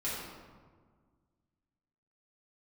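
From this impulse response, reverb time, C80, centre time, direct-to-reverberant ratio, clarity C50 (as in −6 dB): 1.6 s, 1.5 dB, 91 ms, −10.0 dB, −1.0 dB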